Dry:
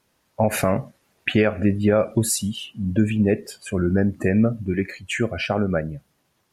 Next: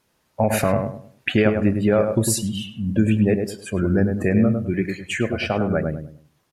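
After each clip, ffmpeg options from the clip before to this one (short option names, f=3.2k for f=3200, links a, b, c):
-filter_complex "[0:a]asplit=2[a][b];[b]adelay=103,lowpass=f=1.2k:p=1,volume=-4.5dB,asplit=2[c][d];[d]adelay=103,lowpass=f=1.2k:p=1,volume=0.32,asplit=2[e][f];[f]adelay=103,lowpass=f=1.2k:p=1,volume=0.32,asplit=2[g][h];[h]adelay=103,lowpass=f=1.2k:p=1,volume=0.32[i];[a][c][e][g][i]amix=inputs=5:normalize=0"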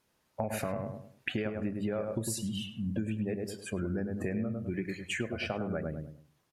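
-af "bandreject=f=50:t=h:w=6,bandreject=f=100:t=h:w=6,bandreject=f=150:t=h:w=6,acompressor=threshold=-23dB:ratio=6,volume=-7dB"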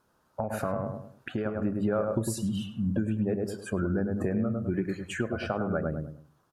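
-af "alimiter=limit=-22dB:level=0:latency=1:release=456,highshelf=f=1.7k:t=q:w=3:g=-6,volume=5.5dB"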